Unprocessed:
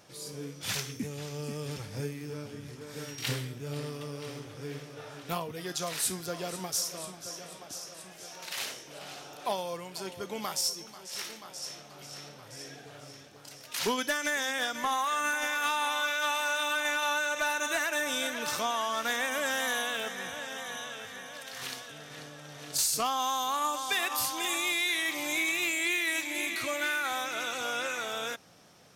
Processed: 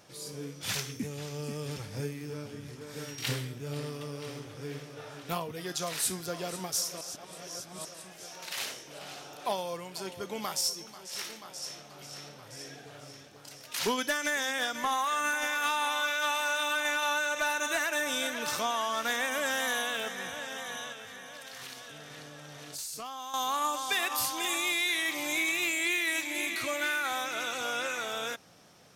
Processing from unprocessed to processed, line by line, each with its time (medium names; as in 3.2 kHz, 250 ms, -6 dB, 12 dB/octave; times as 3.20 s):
7.01–7.85 s: reverse
20.92–23.34 s: compression 2.5:1, threshold -42 dBFS